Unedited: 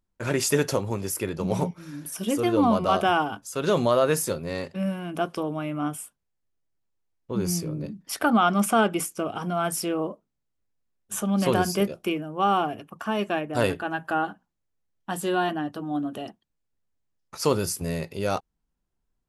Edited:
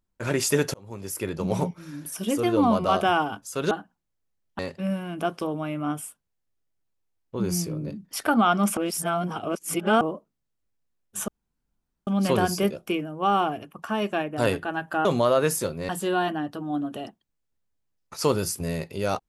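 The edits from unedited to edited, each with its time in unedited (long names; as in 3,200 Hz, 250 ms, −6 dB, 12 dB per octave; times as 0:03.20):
0:00.74–0:01.30: fade in
0:03.71–0:04.55: swap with 0:14.22–0:15.10
0:08.73–0:09.97: reverse
0:11.24: splice in room tone 0.79 s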